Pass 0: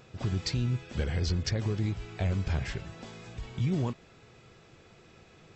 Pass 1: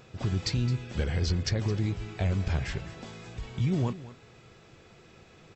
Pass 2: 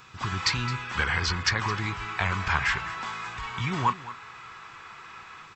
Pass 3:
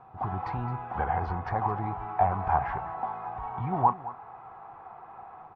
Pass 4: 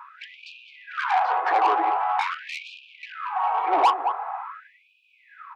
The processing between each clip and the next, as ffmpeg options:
-af "aecho=1:1:216:0.158,volume=1.5dB"
-filter_complex "[0:a]lowshelf=f=790:t=q:w=3:g=-9.5,acrossover=split=490|2500[a][b][c];[b]dynaudnorm=f=200:g=3:m=9dB[d];[a][d][c]amix=inputs=3:normalize=0,volume=5.5dB"
-af "lowpass=f=760:t=q:w=9.5,volume=-2.5dB"
-filter_complex "[0:a]asplit=2[a][b];[b]highpass=f=720:p=1,volume=23dB,asoftclip=type=tanh:threshold=-10dB[c];[a][c]amix=inputs=2:normalize=0,lowpass=f=2.5k:p=1,volume=-6dB,afftfilt=real='re*gte(b*sr/1024,270*pow(2400/270,0.5+0.5*sin(2*PI*0.45*pts/sr)))':imag='im*gte(b*sr/1024,270*pow(2400/270,0.5+0.5*sin(2*PI*0.45*pts/sr)))':win_size=1024:overlap=0.75"

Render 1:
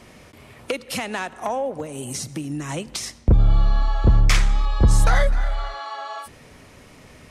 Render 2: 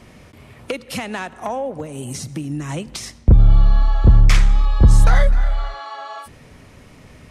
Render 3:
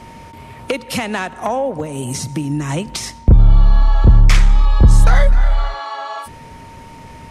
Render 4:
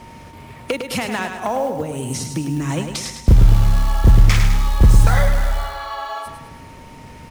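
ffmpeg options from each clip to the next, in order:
-af "bass=f=250:g=5,treble=f=4k:g=-2"
-filter_complex "[0:a]asplit=2[a][b];[b]alimiter=limit=-13dB:level=0:latency=1,volume=2dB[c];[a][c]amix=inputs=2:normalize=0,aeval=exprs='val(0)+0.0141*sin(2*PI*920*n/s)':c=same,volume=-1.5dB"
-filter_complex "[0:a]acrusher=bits=7:mode=log:mix=0:aa=0.000001,asplit=2[a][b];[b]aecho=0:1:104|208|312|416|520|624:0.447|0.214|0.103|0.0494|0.0237|0.0114[c];[a][c]amix=inputs=2:normalize=0,volume=-2.5dB"

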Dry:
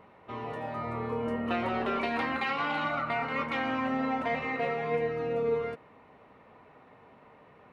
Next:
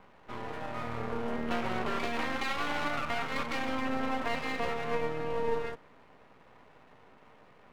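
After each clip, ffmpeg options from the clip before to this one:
-af "aeval=exprs='max(val(0),0)':c=same,volume=2dB"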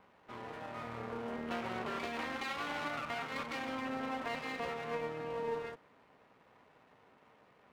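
-af "highpass=f=100:p=1,volume=-5.5dB"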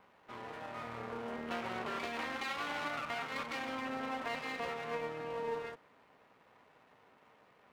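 -af "lowshelf=f=440:g=-4,volume=1dB"

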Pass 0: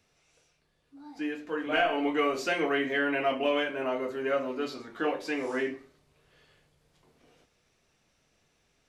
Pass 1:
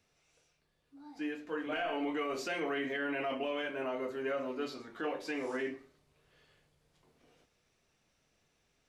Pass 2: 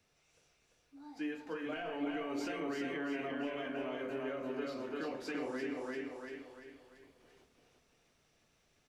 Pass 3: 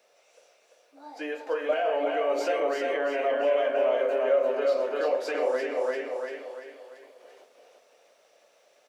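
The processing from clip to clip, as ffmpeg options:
-af "alimiter=limit=-22.5dB:level=0:latency=1:release=30,volume=-4.5dB"
-filter_complex "[0:a]aecho=1:1:343|686|1029|1372|1715:0.708|0.297|0.125|0.0525|0.022,acrossover=split=300[a][b];[b]acompressor=threshold=-40dB:ratio=5[c];[a][c]amix=inputs=2:normalize=0"
-af "highpass=f=560:t=q:w=4.9,volume=8dB"

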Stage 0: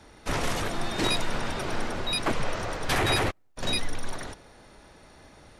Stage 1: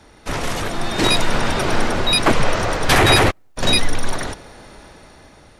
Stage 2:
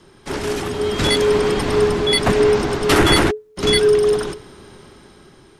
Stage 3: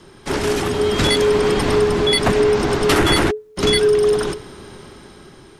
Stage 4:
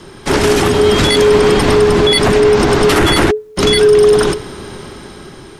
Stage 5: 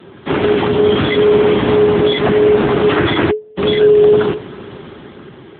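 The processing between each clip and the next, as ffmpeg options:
-af "dynaudnorm=f=400:g=5:m=8dB,volume=4dB"
-af "afreqshift=-430,volume=-1dB"
-af "acompressor=threshold=-18dB:ratio=2.5,volume=4dB"
-af "alimiter=level_in=10dB:limit=-1dB:release=50:level=0:latency=1,volume=-1dB"
-af "volume=-1dB" -ar 8000 -c:a libopencore_amrnb -b:a 7950

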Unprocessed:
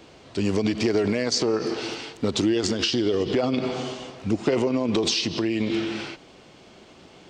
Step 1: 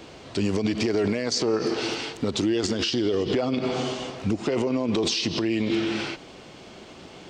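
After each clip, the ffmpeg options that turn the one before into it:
-filter_complex "[0:a]asplit=2[a][b];[b]acompressor=threshold=-32dB:ratio=6,volume=-2.5dB[c];[a][c]amix=inputs=2:normalize=0,alimiter=limit=-15.5dB:level=0:latency=1:release=97"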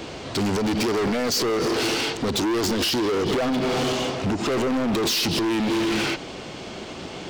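-af "volume=30dB,asoftclip=hard,volume=-30dB,volume=9dB"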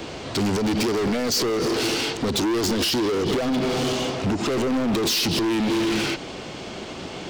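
-filter_complex "[0:a]acrossover=split=470|3000[a][b][c];[b]acompressor=threshold=-29dB:ratio=6[d];[a][d][c]amix=inputs=3:normalize=0,volume=1dB"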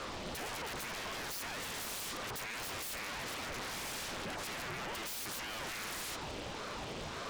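-af "aeval=exprs='0.0335*(abs(mod(val(0)/0.0335+3,4)-2)-1)':c=same,aeval=exprs='val(0)*sin(2*PI*490*n/s+490*0.8/1.8*sin(2*PI*1.8*n/s))':c=same,volume=-4dB"

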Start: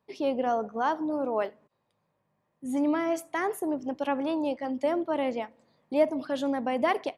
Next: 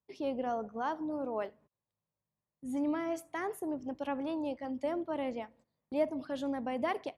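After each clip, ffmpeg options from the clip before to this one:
-af "agate=range=-12dB:threshold=-54dB:ratio=16:detection=peak,equalizer=f=60:w=0.63:g=13.5,volume=-8dB"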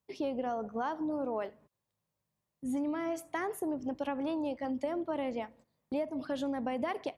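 -af "acompressor=threshold=-35dB:ratio=10,volume=5dB"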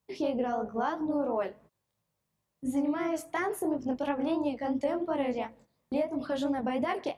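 -af "flanger=delay=17:depth=7.5:speed=2.9,volume=7dB"

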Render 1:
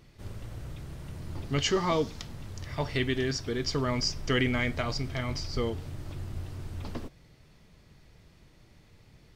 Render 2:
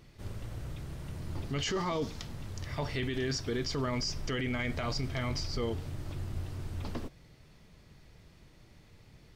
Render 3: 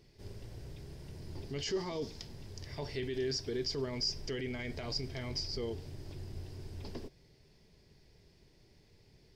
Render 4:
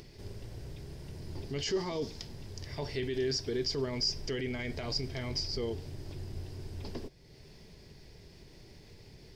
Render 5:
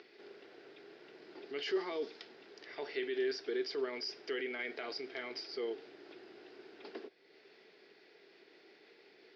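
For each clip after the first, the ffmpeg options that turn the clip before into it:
-af "alimiter=level_in=1dB:limit=-24dB:level=0:latency=1:release=11,volume=-1dB"
-af "equalizer=f=400:t=o:w=0.33:g=9,equalizer=f=1.25k:t=o:w=0.33:g=-10,equalizer=f=5k:t=o:w=0.33:g=10,volume=-7dB"
-af "acompressor=mode=upward:threshold=-47dB:ratio=2.5,volume=3dB"
-af "highpass=f=360:w=0.5412,highpass=f=360:w=1.3066,equalizer=f=570:t=q:w=4:g=-7,equalizer=f=970:t=q:w=4:g=-8,equalizer=f=1.4k:t=q:w=4:g=5,equalizer=f=3.1k:t=q:w=4:g=-3,lowpass=f=3.7k:w=0.5412,lowpass=f=3.7k:w=1.3066,volume=1dB"

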